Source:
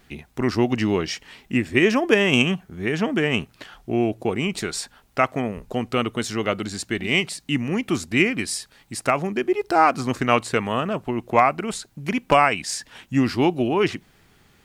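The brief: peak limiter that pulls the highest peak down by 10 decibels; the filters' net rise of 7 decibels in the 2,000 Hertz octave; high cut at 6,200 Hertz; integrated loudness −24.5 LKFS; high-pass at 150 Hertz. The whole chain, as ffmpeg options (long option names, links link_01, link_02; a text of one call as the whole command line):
ffmpeg -i in.wav -af "highpass=150,lowpass=6200,equalizer=frequency=2000:width_type=o:gain=8.5,volume=-1.5dB,alimiter=limit=-10dB:level=0:latency=1" out.wav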